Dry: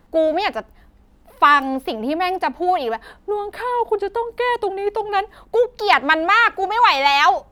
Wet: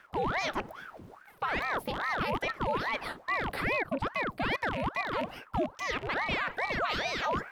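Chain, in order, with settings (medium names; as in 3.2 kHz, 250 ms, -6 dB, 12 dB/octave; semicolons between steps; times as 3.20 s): rattle on loud lows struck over -39 dBFS, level -21 dBFS; reverse; compression 10:1, threshold -28 dBFS, peak gain reduction 20 dB; reverse; peak limiter -26.5 dBFS, peak gain reduction 9.5 dB; ring modulator with a swept carrier 860 Hz, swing 85%, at 2.4 Hz; trim +6 dB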